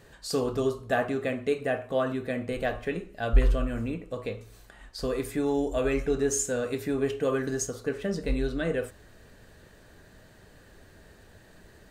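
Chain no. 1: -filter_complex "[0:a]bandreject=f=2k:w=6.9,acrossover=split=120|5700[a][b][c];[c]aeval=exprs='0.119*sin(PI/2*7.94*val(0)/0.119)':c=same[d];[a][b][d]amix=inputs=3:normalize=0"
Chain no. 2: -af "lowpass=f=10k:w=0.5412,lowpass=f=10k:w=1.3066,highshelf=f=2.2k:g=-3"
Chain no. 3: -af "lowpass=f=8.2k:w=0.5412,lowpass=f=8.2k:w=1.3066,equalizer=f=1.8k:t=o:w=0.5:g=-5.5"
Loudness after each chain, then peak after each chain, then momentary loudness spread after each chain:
-27.0, -29.5, -29.5 LUFS; -8.5, -9.5, -9.5 dBFS; 21, 7, 8 LU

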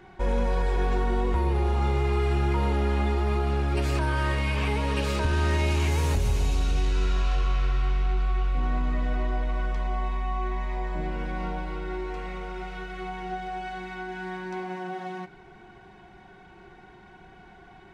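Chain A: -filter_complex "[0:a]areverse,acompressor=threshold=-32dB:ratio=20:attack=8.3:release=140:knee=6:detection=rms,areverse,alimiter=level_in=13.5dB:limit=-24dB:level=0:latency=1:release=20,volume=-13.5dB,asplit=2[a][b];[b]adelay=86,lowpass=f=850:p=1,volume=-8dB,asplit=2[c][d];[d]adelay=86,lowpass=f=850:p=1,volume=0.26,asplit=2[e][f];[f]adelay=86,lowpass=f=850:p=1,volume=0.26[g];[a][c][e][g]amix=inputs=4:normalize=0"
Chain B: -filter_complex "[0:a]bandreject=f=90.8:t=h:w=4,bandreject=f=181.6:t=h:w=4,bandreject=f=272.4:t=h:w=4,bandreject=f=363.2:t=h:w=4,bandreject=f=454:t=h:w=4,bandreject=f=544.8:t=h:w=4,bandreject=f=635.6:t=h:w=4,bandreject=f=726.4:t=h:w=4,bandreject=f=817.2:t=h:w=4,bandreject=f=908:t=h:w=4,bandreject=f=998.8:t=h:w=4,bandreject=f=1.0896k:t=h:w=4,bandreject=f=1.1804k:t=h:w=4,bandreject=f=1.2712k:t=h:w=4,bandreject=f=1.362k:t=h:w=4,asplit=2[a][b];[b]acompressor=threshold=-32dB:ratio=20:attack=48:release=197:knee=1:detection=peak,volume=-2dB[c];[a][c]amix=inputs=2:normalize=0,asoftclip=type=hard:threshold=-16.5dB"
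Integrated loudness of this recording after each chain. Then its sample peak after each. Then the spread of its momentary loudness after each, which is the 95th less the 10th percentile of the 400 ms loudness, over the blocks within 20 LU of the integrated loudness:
-44.0, -26.0 LUFS; -34.0, -16.5 dBFS; 7, 22 LU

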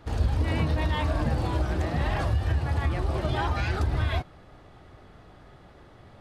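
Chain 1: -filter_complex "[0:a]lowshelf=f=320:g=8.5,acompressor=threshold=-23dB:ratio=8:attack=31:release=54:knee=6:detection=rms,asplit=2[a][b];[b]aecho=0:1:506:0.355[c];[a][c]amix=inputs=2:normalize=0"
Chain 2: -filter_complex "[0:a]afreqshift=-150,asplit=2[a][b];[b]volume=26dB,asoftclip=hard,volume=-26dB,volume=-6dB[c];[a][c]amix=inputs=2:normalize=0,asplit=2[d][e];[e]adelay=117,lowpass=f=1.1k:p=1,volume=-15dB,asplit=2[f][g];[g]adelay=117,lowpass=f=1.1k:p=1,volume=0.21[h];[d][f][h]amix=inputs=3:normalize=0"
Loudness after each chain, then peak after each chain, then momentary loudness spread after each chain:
-26.0, -25.5 LUFS; -13.5, -12.0 dBFS; 20, 1 LU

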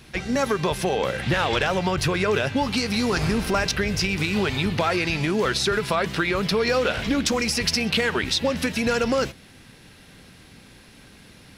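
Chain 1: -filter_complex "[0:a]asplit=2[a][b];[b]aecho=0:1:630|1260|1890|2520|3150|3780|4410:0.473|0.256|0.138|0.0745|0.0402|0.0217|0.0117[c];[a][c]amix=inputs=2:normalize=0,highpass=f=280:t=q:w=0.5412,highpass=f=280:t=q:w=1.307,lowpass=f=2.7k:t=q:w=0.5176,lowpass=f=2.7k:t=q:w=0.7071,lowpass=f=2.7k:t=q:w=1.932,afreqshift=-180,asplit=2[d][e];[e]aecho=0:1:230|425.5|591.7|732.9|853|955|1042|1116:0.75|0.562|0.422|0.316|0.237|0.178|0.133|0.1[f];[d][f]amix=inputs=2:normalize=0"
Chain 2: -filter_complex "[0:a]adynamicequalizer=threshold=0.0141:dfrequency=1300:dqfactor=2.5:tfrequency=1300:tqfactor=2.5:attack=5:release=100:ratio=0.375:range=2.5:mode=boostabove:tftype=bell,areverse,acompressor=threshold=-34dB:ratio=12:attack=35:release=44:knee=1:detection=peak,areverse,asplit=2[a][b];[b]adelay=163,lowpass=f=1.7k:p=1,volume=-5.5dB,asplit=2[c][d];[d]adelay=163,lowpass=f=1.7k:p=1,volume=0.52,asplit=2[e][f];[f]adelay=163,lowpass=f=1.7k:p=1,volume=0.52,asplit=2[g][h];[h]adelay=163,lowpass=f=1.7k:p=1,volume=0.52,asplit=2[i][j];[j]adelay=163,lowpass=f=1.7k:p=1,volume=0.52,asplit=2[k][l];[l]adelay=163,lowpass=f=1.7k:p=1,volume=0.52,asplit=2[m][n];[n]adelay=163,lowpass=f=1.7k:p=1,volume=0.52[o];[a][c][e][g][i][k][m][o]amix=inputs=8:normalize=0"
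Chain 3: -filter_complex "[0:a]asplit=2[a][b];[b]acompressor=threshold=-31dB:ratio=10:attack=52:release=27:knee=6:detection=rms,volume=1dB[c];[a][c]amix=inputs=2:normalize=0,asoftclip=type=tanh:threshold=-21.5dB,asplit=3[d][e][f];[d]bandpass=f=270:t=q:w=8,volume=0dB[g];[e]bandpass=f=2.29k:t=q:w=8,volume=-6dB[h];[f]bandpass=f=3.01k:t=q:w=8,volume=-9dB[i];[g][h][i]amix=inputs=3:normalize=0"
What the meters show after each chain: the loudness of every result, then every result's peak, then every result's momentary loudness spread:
-21.5, -30.5, -36.5 LUFS; -6.5, -15.0, -21.0 dBFS; 9, 17, 20 LU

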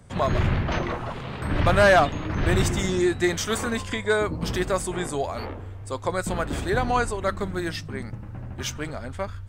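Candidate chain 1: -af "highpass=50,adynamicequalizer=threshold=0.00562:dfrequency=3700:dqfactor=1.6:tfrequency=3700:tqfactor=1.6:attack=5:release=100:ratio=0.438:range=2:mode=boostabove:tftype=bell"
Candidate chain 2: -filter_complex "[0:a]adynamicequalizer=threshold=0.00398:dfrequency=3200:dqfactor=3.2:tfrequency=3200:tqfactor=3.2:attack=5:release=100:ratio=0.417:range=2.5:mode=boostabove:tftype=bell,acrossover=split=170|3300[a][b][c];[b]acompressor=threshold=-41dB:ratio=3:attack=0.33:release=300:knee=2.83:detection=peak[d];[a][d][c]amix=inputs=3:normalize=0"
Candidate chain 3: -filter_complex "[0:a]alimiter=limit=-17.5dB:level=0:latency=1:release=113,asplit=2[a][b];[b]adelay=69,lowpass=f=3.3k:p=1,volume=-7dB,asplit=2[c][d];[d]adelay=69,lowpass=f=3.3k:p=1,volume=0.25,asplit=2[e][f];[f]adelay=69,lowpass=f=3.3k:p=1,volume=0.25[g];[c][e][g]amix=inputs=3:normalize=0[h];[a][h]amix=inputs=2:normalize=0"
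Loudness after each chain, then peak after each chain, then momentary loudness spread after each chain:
-25.0, -31.5, -28.0 LUFS; -6.5, -13.0, -14.0 dBFS; 13, 12, 7 LU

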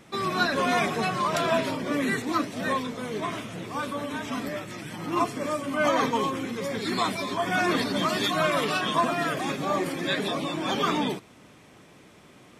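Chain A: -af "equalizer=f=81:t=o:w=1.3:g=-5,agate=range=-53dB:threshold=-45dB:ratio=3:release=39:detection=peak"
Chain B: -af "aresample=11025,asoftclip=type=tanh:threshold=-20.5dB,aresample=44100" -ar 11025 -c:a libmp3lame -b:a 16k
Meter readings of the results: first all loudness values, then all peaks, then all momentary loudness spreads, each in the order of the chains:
-27.0, -29.0 LUFS; -11.0, -17.0 dBFS; 8, 6 LU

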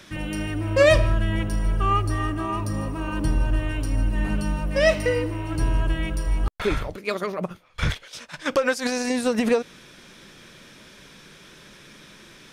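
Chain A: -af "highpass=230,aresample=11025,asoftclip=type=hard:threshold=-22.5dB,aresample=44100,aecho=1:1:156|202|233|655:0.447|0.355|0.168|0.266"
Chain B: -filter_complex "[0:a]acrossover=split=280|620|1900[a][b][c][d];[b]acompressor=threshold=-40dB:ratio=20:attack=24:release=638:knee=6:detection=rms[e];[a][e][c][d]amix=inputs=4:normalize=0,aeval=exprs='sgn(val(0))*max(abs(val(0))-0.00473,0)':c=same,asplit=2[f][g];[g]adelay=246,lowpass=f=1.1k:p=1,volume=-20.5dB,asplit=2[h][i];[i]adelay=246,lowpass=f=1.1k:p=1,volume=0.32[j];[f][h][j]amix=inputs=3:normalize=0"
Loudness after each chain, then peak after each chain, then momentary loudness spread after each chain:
-28.5, -26.5 LUFS; -16.0, -7.5 dBFS; 21, 9 LU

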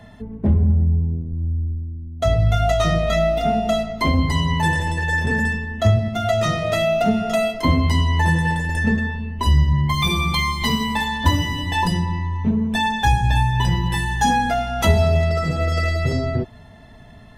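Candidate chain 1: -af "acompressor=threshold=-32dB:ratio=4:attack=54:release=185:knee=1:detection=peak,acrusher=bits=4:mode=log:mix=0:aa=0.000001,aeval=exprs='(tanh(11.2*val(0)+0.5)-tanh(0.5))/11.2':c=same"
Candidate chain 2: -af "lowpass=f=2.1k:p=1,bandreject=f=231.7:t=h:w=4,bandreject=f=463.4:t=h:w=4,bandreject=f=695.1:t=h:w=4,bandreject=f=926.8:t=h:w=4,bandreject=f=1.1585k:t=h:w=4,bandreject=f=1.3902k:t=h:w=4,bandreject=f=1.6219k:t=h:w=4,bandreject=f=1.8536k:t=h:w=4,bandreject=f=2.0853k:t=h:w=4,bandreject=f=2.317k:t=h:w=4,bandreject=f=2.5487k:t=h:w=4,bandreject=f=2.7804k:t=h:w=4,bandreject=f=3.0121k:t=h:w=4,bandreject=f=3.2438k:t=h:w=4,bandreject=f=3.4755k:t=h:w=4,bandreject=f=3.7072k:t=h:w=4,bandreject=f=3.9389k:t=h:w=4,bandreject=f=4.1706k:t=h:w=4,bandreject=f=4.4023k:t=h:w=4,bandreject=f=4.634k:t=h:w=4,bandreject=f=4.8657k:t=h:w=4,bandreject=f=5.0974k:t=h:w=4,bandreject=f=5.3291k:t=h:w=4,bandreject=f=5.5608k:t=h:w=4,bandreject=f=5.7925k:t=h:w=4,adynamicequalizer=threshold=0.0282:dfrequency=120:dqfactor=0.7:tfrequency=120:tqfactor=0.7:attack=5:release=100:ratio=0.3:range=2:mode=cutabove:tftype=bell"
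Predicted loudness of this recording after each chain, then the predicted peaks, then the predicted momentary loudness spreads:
-33.0, -22.0 LUFS; -18.0, -5.0 dBFS; 3, 6 LU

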